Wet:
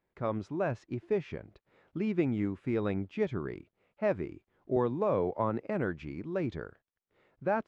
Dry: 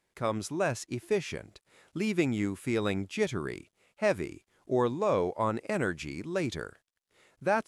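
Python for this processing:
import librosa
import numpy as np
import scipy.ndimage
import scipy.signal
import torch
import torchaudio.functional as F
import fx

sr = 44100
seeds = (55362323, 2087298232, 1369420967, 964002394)

y = fx.spacing_loss(x, sr, db_at_10k=37)
y = fx.band_squash(y, sr, depth_pct=70, at=(4.76, 5.61))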